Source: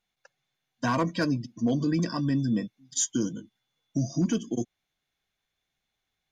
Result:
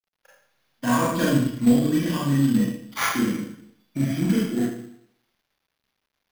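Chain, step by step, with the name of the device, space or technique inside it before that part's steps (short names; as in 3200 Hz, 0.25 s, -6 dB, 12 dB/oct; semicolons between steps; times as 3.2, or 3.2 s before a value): 1.08–1.68 low shelf 450 Hz +5 dB; Schroeder reverb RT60 0.68 s, combs from 29 ms, DRR -6.5 dB; early companding sampler (sample-rate reducer 8100 Hz, jitter 0%; companded quantiser 6-bit); gain -2.5 dB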